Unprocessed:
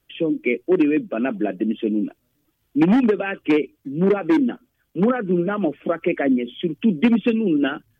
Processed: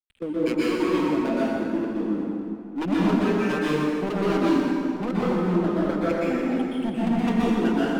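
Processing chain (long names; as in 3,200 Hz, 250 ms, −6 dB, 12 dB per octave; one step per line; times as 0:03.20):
slack as between gear wheels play −26.5 dBFS
gate pattern "x.x.x.xx.xxxx." 138 BPM −12 dB
wave folding −14.5 dBFS
dense smooth reverb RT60 2.5 s, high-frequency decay 0.7×, pre-delay 110 ms, DRR −8.5 dB
level −8.5 dB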